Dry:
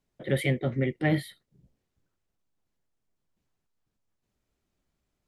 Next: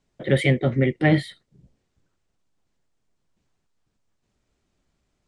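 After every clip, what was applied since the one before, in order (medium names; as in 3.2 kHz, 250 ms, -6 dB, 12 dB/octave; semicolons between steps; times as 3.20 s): steep low-pass 9 kHz; trim +7 dB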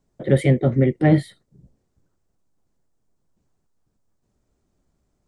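peaking EQ 2.8 kHz -11.5 dB 2 oct; trim +3.5 dB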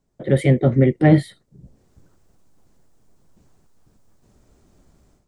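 level rider gain up to 15 dB; trim -1 dB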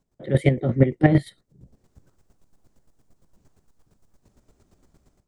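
square tremolo 8.7 Hz, depth 65%, duty 25%; trim +1 dB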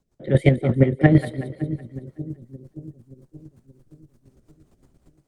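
rotary cabinet horn 5.5 Hz; two-band feedback delay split 430 Hz, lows 576 ms, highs 186 ms, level -12.5 dB; trim +3.5 dB; Opus 48 kbps 48 kHz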